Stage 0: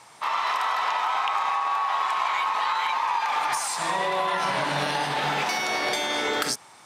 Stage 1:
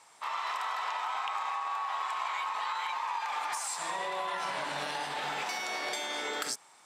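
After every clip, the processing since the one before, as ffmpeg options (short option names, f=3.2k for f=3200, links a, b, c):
-af "highpass=f=360:p=1,equalizer=f=7.6k:w=6.8:g=7,volume=-8.5dB"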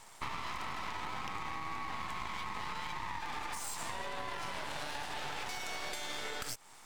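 -af "aeval=exprs='max(val(0),0)':c=same,acompressor=threshold=-42dB:ratio=6,volume=7dB"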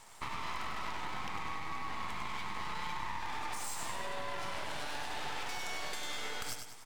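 -af "aecho=1:1:99|198|297|396|495|594:0.501|0.236|0.111|0.052|0.0245|0.0115,volume=-1dB"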